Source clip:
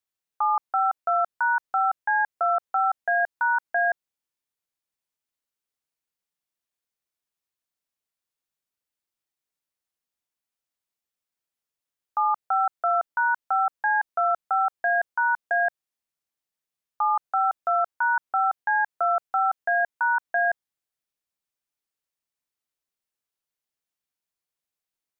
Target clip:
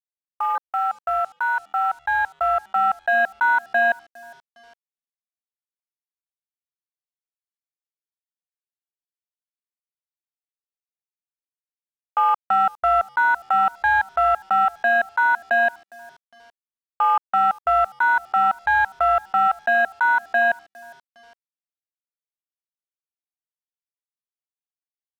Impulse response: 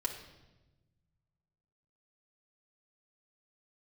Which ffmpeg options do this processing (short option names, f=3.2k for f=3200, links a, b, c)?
-filter_complex "[0:a]asplit=2[a][b];[b]asoftclip=type=hard:threshold=-33dB,volume=-7dB[c];[a][c]amix=inputs=2:normalize=0,dynaudnorm=f=490:g=17:m=16dB,alimiter=limit=-9.5dB:level=0:latency=1,acontrast=81,afwtdn=0.0708,equalizer=f=420:w=8:g=-14.5,asplit=2[d][e];[e]adelay=408,lowpass=f=1.3k:p=1,volume=-22dB,asplit=2[f][g];[g]adelay=408,lowpass=f=1.3k:p=1,volume=0.43,asplit=2[h][i];[i]adelay=408,lowpass=f=1.3k:p=1,volume=0.43[j];[d][f][h][j]amix=inputs=4:normalize=0,acrusher=bits=6:mix=0:aa=0.5,volume=-7.5dB"